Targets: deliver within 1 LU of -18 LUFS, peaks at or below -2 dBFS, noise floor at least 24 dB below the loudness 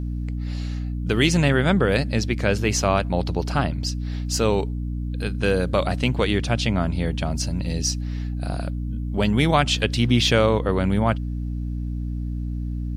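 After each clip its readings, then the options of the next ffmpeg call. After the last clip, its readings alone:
hum 60 Hz; harmonics up to 300 Hz; hum level -24 dBFS; loudness -23.0 LUFS; peak -4.0 dBFS; loudness target -18.0 LUFS
-> -af "bandreject=f=60:t=h:w=4,bandreject=f=120:t=h:w=4,bandreject=f=180:t=h:w=4,bandreject=f=240:t=h:w=4,bandreject=f=300:t=h:w=4"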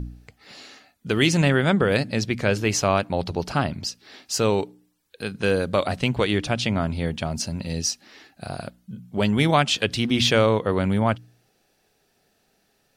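hum none; loudness -22.5 LUFS; peak -5.0 dBFS; loudness target -18.0 LUFS
-> -af "volume=4.5dB,alimiter=limit=-2dB:level=0:latency=1"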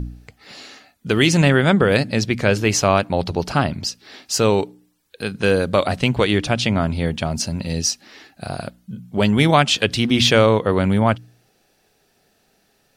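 loudness -18.5 LUFS; peak -2.0 dBFS; noise floor -63 dBFS

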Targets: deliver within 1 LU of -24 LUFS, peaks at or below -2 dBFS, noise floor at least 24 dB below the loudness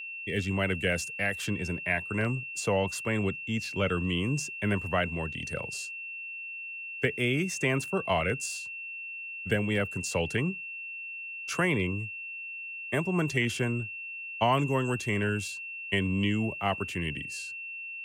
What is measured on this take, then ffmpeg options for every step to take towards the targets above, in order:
steady tone 2700 Hz; tone level -37 dBFS; loudness -30.5 LUFS; peak -13.5 dBFS; loudness target -24.0 LUFS
-> -af "bandreject=f=2.7k:w=30"
-af "volume=6.5dB"

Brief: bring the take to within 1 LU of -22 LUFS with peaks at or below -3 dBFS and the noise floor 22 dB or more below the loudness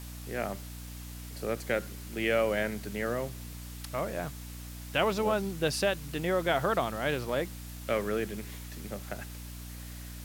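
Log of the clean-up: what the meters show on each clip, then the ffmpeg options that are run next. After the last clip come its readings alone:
hum 60 Hz; harmonics up to 300 Hz; hum level -41 dBFS; noise floor -43 dBFS; noise floor target -54 dBFS; loudness -32.0 LUFS; peak -13.5 dBFS; loudness target -22.0 LUFS
-> -af "bandreject=f=60:t=h:w=4,bandreject=f=120:t=h:w=4,bandreject=f=180:t=h:w=4,bandreject=f=240:t=h:w=4,bandreject=f=300:t=h:w=4"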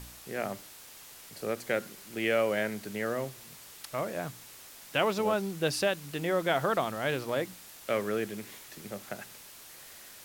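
hum none; noise floor -50 dBFS; noise floor target -54 dBFS
-> -af "afftdn=nr=6:nf=-50"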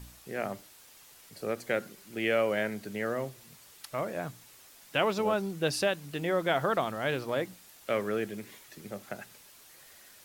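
noise floor -55 dBFS; loudness -32.0 LUFS; peak -13.5 dBFS; loudness target -22.0 LUFS
-> -af "volume=10dB"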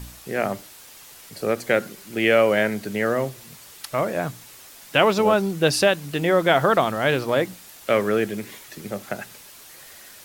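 loudness -22.0 LUFS; peak -3.5 dBFS; noise floor -45 dBFS

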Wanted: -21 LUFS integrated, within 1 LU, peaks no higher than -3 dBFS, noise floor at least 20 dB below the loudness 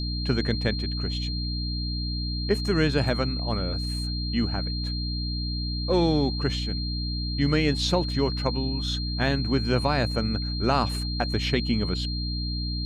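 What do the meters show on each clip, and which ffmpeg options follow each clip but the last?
hum 60 Hz; harmonics up to 300 Hz; hum level -27 dBFS; steady tone 4200 Hz; tone level -33 dBFS; loudness -26.5 LUFS; peak -10.0 dBFS; loudness target -21.0 LUFS
-> -af "bandreject=f=60:t=h:w=4,bandreject=f=120:t=h:w=4,bandreject=f=180:t=h:w=4,bandreject=f=240:t=h:w=4,bandreject=f=300:t=h:w=4"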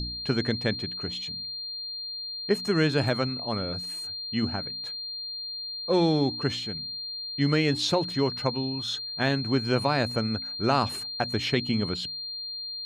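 hum none; steady tone 4200 Hz; tone level -33 dBFS
-> -af "bandreject=f=4.2k:w=30"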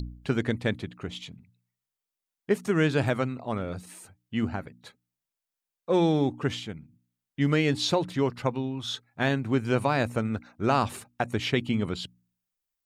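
steady tone none; loudness -28.0 LUFS; peak -10.5 dBFS; loudness target -21.0 LUFS
-> -af "volume=7dB"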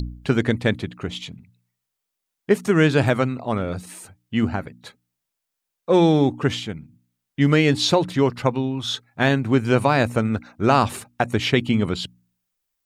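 loudness -21.0 LUFS; peak -3.5 dBFS; noise floor -82 dBFS

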